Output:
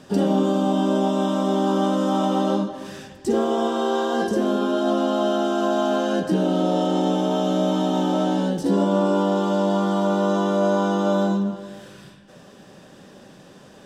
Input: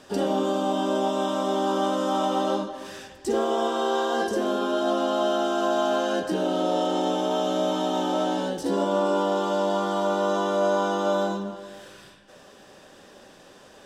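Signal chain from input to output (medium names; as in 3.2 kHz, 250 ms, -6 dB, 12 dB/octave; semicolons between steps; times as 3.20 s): peaking EQ 160 Hz +12.5 dB 1.5 oct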